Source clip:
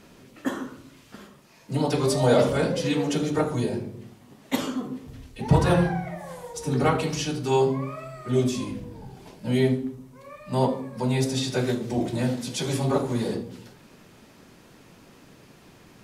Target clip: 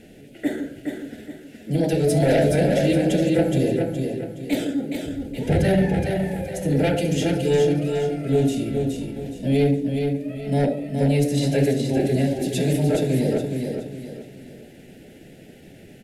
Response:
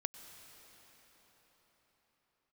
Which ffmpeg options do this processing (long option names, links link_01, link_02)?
-af "lowpass=frequency=12000:width=0.5412,lowpass=frequency=12000:width=1.3066,equalizer=frequency=5000:width=1:gain=-9.5,aeval=exprs='0.376*sin(PI/2*2*val(0)/0.376)':channel_layout=same,asetrate=48091,aresample=44100,atempo=0.917004,asuperstop=centerf=1100:order=4:qfactor=1.1,aecho=1:1:419|838|1257|1676:0.562|0.202|0.0729|0.0262,volume=-4.5dB"